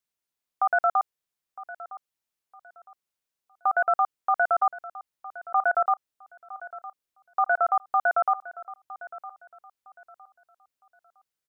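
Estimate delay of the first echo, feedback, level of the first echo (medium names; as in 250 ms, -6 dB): 960 ms, 28%, -17.0 dB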